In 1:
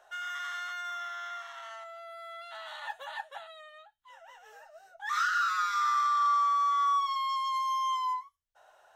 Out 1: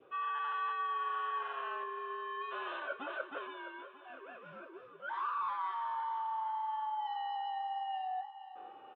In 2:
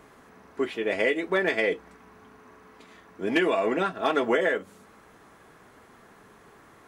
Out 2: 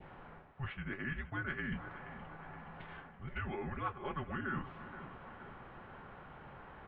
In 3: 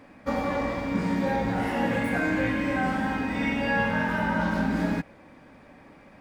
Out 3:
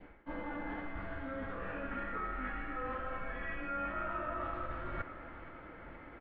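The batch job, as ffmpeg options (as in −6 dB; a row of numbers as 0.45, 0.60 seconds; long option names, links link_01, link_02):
-af "highpass=frequency=240:width_type=q:width=0.5412,highpass=frequency=240:width_type=q:width=1.307,lowpass=frequency=3400:width_type=q:width=0.5176,lowpass=frequency=3400:width_type=q:width=0.7071,lowpass=frequency=3400:width_type=q:width=1.932,afreqshift=-270,areverse,acompressor=threshold=-39dB:ratio=16,areverse,adynamicequalizer=threshold=0.00141:dfrequency=1300:dqfactor=1.5:tfrequency=1300:tqfactor=1.5:attack=5:release=100:ratio=0.375:range=3:mode=boostabove:tftype=bell,aecho=1:1:471|942|1413|1884|2355|2826:0.211|0.12|0.0687|0.0391|0.0223|0.0127,volume=1dB"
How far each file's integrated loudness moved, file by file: −8.0, −17.5, −14.0 LU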